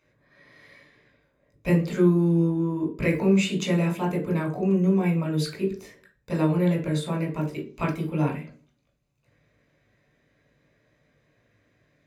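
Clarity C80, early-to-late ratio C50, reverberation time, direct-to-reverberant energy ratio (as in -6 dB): 15.5 dB, 10.5 dB, 0.40 s, 0.0 dB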